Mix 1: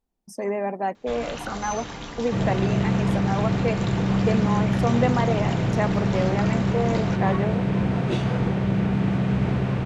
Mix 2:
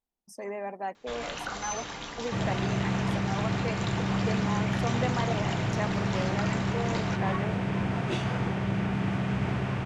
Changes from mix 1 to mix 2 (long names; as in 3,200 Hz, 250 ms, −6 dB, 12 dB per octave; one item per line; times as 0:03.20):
speech −5.5 dB
second sound: add thirty-one-band graphic EQ 100 Hz +6 dB, 500 Hz −5 dB, 4,000 Hz −4 dB
master: add low-shelf EQ 450 Hz −8.5 dB